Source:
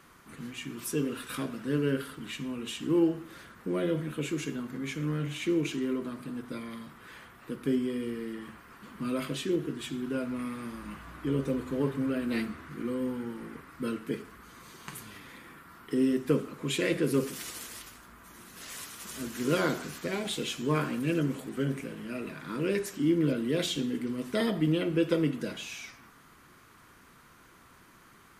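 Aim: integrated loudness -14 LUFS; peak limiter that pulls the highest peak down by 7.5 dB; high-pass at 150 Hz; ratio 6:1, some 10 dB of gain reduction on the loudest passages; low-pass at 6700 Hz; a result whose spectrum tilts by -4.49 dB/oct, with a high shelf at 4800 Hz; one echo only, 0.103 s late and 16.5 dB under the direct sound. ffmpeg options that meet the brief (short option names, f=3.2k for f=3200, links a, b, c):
-af "highpass=150,lowpass=6.7k,highshelf=f=4.8k:g=4,acompressor=threshold=-32dB:ratio=6,alimiter=level_in=5.5dB:limit=-24dB:level=0:latency=1,volume=-5.5dB,aecho=1:1:103:0.15,volume=25.5dB"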